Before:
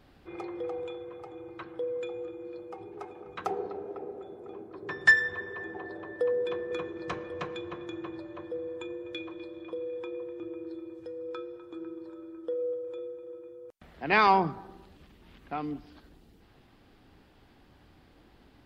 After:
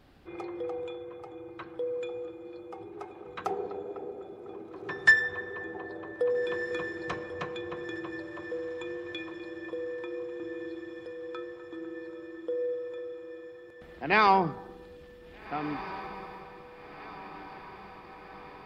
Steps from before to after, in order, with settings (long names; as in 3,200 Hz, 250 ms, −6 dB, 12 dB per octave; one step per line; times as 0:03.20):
feedback delay with all-pass diffusion 1,659 ms, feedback 63%, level −14.5 dB